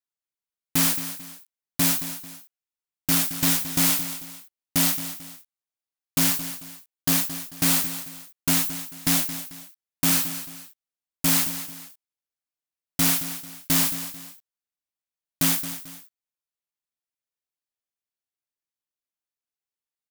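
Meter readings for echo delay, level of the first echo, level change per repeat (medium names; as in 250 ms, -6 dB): 221 ms, -12.0 dB, -9.0 dB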